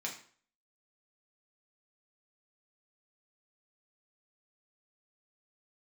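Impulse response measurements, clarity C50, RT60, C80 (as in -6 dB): 8.5 dB, 0.50 s, 12.5 dB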